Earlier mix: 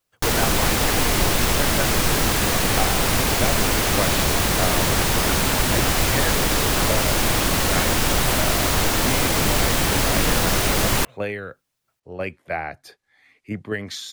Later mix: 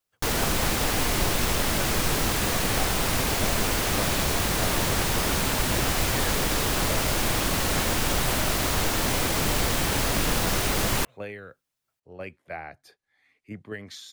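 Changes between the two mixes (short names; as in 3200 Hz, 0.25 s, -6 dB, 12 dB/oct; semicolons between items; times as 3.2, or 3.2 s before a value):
speech -9.5 dB; background -5.0 dB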